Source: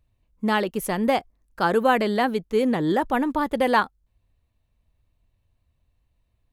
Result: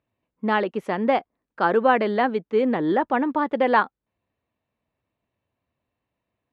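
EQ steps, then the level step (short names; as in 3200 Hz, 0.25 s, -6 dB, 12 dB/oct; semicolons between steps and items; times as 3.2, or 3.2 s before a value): BPF 220–2500 Hz; +1.5 dB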